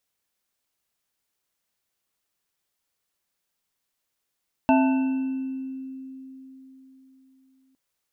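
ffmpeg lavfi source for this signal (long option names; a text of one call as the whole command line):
ffmpeg -f lavfi -i "aevalsrc='0.158*pow(10,-3*t/4.05)*sin(2*PI*264*t)+0.1*pow(10,-3*t/0.87)*sin(2*PI*660*t)+0.112*pow(10,-3*t/1.05)*sin(2*PI*882*t)+0.02*pow(10,-3*t/1.44)*sin(2*PI*1510*t)+0.0355*pow(10,-3*t/1.66)*sin(2*PI*2670*t)':duration=3.06:sample_rate=44100" out.wav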